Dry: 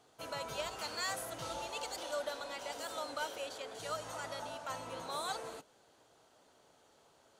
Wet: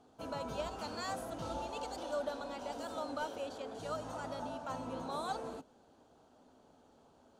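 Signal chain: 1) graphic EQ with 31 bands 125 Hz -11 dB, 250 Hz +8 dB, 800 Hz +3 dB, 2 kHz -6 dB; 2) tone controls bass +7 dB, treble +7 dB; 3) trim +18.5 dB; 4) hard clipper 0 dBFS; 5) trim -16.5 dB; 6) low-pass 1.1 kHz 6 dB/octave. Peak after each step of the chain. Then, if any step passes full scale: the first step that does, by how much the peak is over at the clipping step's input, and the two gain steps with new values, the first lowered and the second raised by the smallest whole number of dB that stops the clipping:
-26.5 dBFS, -23.5 dBFS, -5.0 dBFS, -5.0 dBFS, -21.5 dBFS, -26.5 dBFS; nothing clips

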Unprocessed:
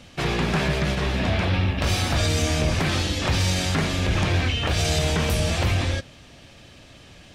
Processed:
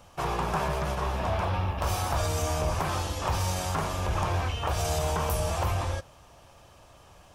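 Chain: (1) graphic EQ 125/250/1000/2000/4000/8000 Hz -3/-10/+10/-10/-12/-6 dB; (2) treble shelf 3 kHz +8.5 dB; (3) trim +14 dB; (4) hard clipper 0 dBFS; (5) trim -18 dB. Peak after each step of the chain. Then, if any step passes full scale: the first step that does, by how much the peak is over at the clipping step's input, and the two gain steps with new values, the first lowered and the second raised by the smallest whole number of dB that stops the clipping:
-9.5 dBFS, -9.0 dBFS, +5.0 dBFS, 0.0 dBFS, -18.0 dBFS; step 3, 5.0 dB; step 3 +9 dB, step 5 -13 dB

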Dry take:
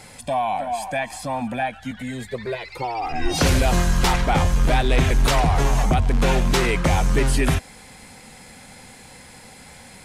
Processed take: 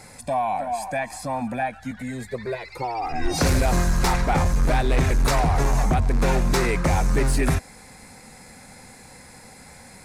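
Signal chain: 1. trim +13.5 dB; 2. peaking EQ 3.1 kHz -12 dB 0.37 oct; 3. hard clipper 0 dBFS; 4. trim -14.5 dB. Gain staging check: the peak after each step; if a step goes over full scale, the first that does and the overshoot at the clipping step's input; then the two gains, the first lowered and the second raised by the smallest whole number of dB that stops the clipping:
+3.0 dBFS, +4.0 dBFS, 0.0 dBFS, -14.5 dBFS; step 1, 4.0 dB; step 1 +9.5 dB, step 4 -10.5 dB

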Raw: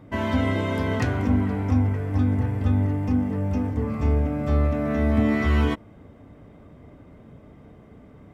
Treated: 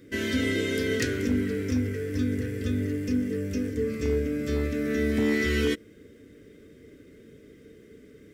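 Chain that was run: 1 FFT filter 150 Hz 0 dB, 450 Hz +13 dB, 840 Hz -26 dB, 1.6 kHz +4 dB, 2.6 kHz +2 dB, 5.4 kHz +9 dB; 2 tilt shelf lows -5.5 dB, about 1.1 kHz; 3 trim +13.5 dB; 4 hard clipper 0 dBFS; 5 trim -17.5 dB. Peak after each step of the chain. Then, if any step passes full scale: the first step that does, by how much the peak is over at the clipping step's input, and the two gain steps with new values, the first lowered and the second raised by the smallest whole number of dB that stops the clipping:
-3.5 dBFS, -6.5 dBFS, +7.0 dBFS, 0.0 dBFS, -17.5 dBFS; step 3, 7.0 dB; step 3 +6.5 dB, step 5 -10.5 dB

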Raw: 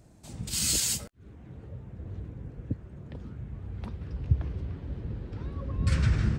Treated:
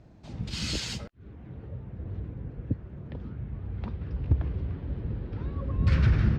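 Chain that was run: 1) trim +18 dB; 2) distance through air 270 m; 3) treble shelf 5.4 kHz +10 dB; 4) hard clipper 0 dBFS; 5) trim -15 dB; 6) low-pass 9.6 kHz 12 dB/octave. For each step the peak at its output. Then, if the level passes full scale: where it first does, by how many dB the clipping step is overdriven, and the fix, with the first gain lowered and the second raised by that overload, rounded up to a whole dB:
+6.5 dBFS, +6.5 dBFS, +6.5 dBFS, 0.0 dBFS, -15.0 dBFS, -15.0 dBFS; step 1, 6.5 dB; step 1 +11 dB, step 5 -8 dB

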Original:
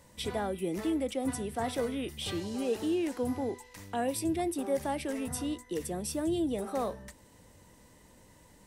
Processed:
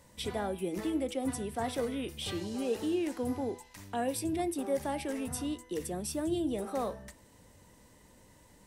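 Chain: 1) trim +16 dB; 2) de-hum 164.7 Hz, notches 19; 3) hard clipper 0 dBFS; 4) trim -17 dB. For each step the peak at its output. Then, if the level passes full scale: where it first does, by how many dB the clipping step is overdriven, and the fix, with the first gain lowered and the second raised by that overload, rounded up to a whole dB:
-4.0 dBFS, -4.0 dBFS, -4.0 dBFS, -21.0 dBFS; nothing clips

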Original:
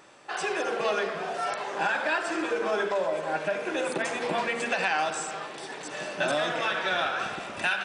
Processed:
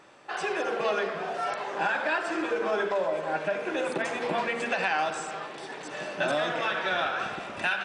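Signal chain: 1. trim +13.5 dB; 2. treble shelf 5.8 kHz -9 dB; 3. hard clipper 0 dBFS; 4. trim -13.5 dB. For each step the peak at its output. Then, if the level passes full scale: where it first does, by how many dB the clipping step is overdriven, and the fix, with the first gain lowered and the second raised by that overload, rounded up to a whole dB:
-1.0 dBFS, -1.5 dBFS, -1.5 dBFS, -15.0 dBFS; nothing clips

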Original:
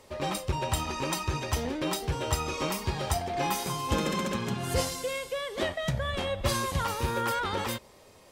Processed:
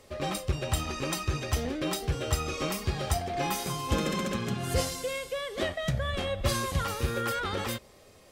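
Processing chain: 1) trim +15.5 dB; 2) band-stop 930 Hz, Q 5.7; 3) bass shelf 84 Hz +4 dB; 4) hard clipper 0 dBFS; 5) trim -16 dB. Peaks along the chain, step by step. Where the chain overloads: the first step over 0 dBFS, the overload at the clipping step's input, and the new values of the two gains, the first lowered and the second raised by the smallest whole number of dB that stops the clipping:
+3.0 dBFS, +2.0 dBFS, +3.5 dBFS, 0.0 dBFS, -16.0 dBFS; step 1, 3.5 dB; step 1 +11.5 dB, step 5 -12 dB

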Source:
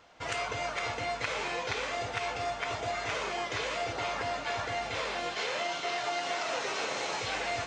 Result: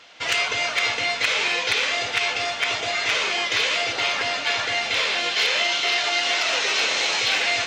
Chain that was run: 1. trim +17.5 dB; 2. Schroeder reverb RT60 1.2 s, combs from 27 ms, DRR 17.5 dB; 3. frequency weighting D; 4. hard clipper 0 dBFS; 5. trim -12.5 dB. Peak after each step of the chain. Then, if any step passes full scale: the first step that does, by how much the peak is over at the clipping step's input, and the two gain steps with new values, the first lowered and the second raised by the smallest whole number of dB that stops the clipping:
-2.5 dBFS, -2.5 dBFS, +7.0 dBFS, 0.0 dBFS, -12.5 dBFS; step 3, 7.0 dB; step 1 +10.5 dB, step 5 -5.5 dB

